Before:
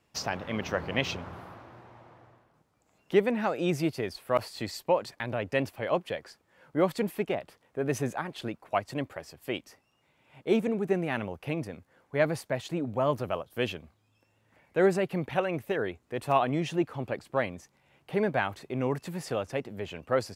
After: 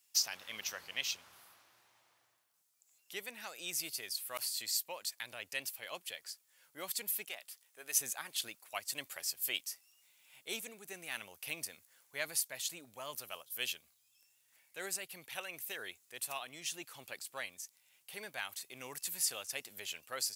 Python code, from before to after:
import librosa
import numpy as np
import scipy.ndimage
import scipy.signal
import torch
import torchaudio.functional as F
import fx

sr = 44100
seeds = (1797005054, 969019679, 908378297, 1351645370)

y = fx.highpass(x, sr, hz=600.0, slope=6, at=(7.29, 8.01))
y = fx.high_shelf(y, sr, hz=2900.0, db=11.5)
y = fx.rider(y, sr, range_db=10, speed_s=0.5)
y = librosa.effects.preemphasis(y, coef=0.97, zi=[0.0])